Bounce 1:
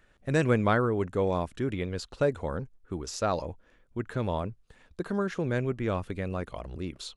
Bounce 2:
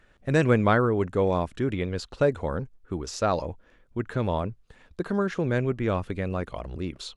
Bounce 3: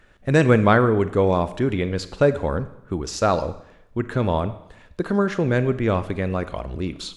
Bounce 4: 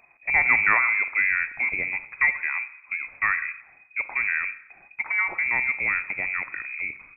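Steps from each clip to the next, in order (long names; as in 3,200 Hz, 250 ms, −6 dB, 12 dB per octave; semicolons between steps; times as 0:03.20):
high-shelf EQ 9,000 Hz −8.5 dB; level +3.5 dB
four-comb reverb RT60 0.84 s, combs from 28 ms, DRR 13 dB; level +5 dB
voice inversion scrambler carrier 2,500 Hz; level −4.5 dB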